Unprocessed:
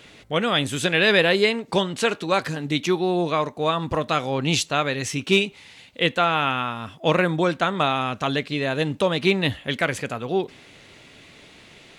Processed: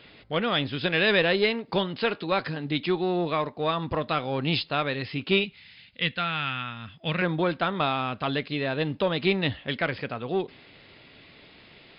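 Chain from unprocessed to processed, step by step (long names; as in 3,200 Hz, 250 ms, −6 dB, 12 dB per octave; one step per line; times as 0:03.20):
0:05.44–0:07.22: flat-topped bell 560 Hz −10.5 dB 2.4 octaves
in parallel at −6 dB: asymmetric clip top −21 dBFS
on the sum: linear-phase brick-wall low-pass 5,200 Hz
level −7 dB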